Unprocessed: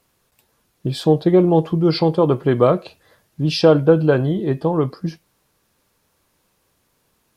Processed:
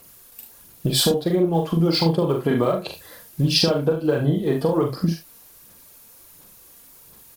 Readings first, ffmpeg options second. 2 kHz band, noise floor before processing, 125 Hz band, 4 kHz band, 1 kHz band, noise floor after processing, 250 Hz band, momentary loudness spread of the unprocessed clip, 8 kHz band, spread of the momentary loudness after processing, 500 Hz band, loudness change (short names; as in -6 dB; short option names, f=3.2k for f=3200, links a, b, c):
-2.0 dB, -66 dBFS, -3.0 dB, +5.5 dB, -5.0 dB, -49 dBFS, -3.5 dB, 10 LU, n/a, 10 LU, -5.5 dB, -3.5 dB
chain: -filter_complex "[0:a]aphaser=in_gain=1:out_gain=1:delay=4.3:decay=0.48:speed=1.4:type=sinusoidal,acompressor=threshold=-23dB:ratio=10,aemphasis=mode=production:type=50fm,asplit=2[a][b];[b]aecho=0:1:42|72:0.596|0.299[c];[a][c]amix=inputs=2:normalize=0,volume=5.5dB"